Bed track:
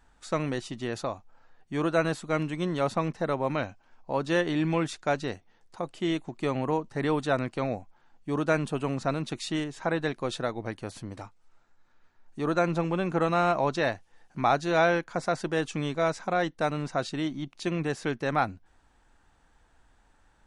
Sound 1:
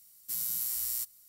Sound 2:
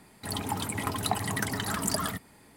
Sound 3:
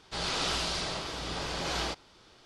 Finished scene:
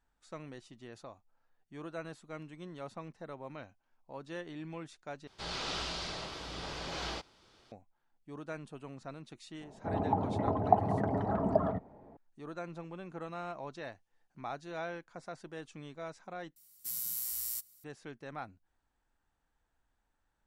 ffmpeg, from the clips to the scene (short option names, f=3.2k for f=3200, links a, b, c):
-filter_complex "[0:a]volume=-17dB[a];[3:a]acrossover=split=7100[b][c];[c]acompressor=threshold=-58dB:ratio=4:attack=1:release=60[d];[b][d]amix=inputs=2:normalize=0[e];[2:a]lowpass=f=670:t=q:w=2.8[f];[a]asplit=3[g][h][i];[g]atrim=end=5.274[j];[e]atrim=end=2.45,asetpts=PTS-STARTPTS,volume=-6dB[k];[h]atrim=start=7.716:end=16.564[l];[1:a]atrim=end=1.28,asetpts=PTS-STARTPTS,volume=-4dB[m];[i]atrim=start=17.836[n];[f]atrim=end=2.56,asetpts=PTS-STARTPTS,afade=t=in:d=0.004:c=hsin,afade=t=out:st=2.556:d=0.004:c=hsin,adelay=9610[o];[j][k]acrossfade=d=0.004:c1=hsin:c2=hsin[p];[p][l]acrossfade=d=0.004:c1=hsin:c2=hsin[q];[q][m]acrossfade=d=0.004:c1=hsin:c2=hsin[r];[r][n]acrossfade=d=0.004:c1=hsin:c2=hsin[s];[s][o]amix=inputs=2:normalize=0"